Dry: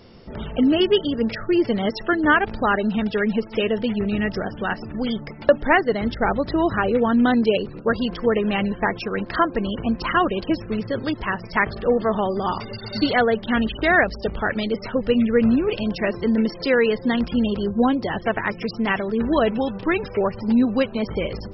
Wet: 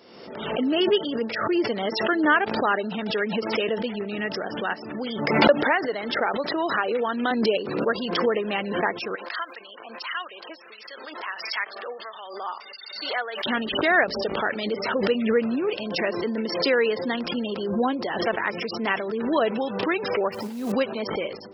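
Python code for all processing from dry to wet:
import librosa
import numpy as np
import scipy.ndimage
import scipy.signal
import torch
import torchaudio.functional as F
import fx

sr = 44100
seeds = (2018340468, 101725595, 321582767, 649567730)

y = fx.chain(x, sr, fx.low_shelf(hz=310.0, db=-10.5),
    fx.band_squash(depth_pct=70), at=(5.63, 7.31))
y = fx.chain(y, sr, fx.bessel_highpass(hz=1200.0, order=2),
    fx.harmonic_tremolo(hz=1.5, depth_pct=70, crossover_hz=1800.0), at=(9.15, 13.46))
y = fx.chain(y, sr, fx.over_compress(threshold_db=-25.0, ratio=-1.0),
    fx.quant_companded(bits=6), at=(20.32, 20.72))
y = scipy.signal.sosfilt(scipy.signal.butter(2, 320.0, 'highpass', fs=sr, output='sos'), y)
y = fx.pre_swell(y, sr, db_per_s=51.0)
y = y * 10.0 ** (-2.5 / 20.0)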